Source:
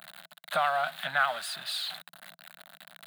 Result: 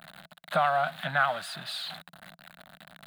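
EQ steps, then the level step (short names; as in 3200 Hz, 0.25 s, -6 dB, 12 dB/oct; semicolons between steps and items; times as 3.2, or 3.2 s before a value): tilt -2 dB/oct; low shelf 180 Hz +7.5 dB; +1.5 dB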